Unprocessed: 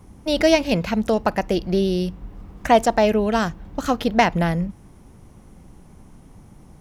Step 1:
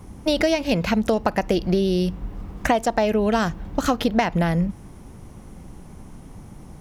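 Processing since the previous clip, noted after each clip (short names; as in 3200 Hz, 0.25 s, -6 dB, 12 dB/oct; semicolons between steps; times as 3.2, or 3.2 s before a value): compressor 10:1, threshold -21 dBFS, peak gain reduction 12.5 dB; gain +5 dB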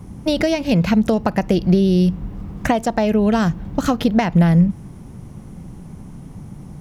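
bell 150 Hz +9.5 dB 1.5 oct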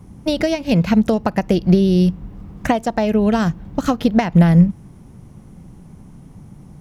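upward expander 1.5:1, over -25 dBFS; gain +3 dB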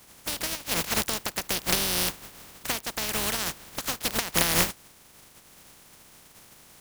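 spectral contrast lowered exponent 0.2; gain -12.5 dB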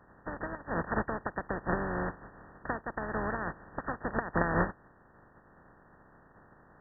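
brick-wall FIR low-pass 1900 Hz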